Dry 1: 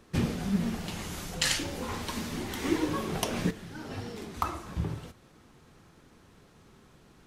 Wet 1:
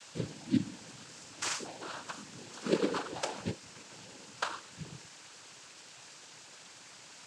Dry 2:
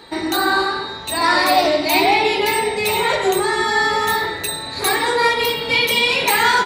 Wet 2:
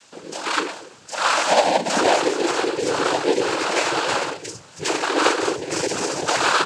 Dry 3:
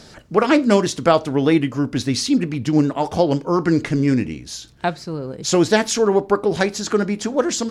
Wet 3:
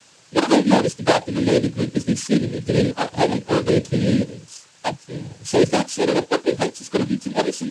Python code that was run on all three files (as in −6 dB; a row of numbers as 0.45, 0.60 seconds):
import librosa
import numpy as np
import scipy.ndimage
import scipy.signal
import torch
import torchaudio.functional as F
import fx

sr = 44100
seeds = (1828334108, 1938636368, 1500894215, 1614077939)

y = fx.bit_reversed(x, sr, seeds[0], block=16)
y = fx.noise_reduce_blind(y, sr, reduce_db=14)
y = fx.quant_dither(y, sr, seeds[1], bits=8, dither='triangular')
y = fx.noise_vocoder(y, sr, seeds[2], bands=8)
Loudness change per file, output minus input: −5.0, −4.0, −1.5 LU